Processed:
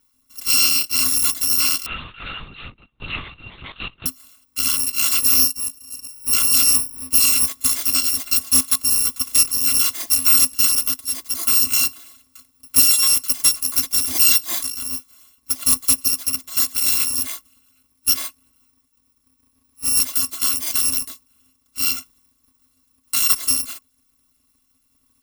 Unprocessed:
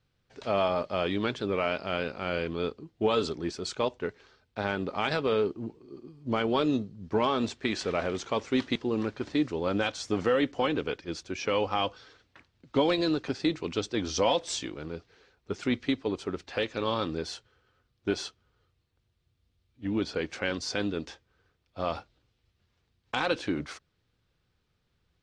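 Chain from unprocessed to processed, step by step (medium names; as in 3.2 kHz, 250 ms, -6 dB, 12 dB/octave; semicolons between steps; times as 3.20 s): bit-reversed sample order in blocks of 256 samples; treble shelf 2.2 kHz +9.5 dB; small resonant body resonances 260/1100 Hz, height 17 dB, ringing for 85 ms; 1.86–4.06 s: LPC vocoder at 8 kHz whisper; trim +2 dB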